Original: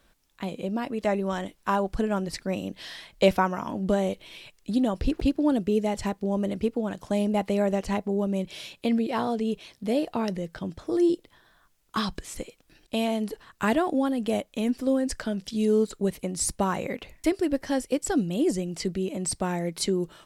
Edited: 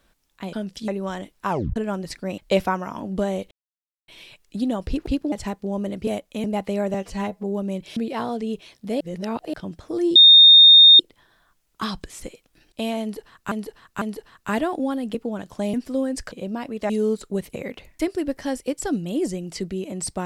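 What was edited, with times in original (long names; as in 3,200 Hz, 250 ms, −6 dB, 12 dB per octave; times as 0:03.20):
0:00.53–0:01.11: swap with 0:15.24–0:15.59
0:01.72: tape stop 0.27 s
0:02.61–0:03.09: remove
0:04.22: splice in silence 0.57 s
0:05.46–0:05.91: remove
0:06.66–0:07.25: swap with 0:14.29–0:14.66
0:07.75–0:08.08: time-stretch 1.5×
0:08.61–0:08.95: remove
0:09.99–0:10.52: reverse
0:11.14: insert tone 3,670 Hz −6 dBFS 0.84 s
0:13.16–0:13.66: repeat, 3 plays
0:16.25–0:16.80: remove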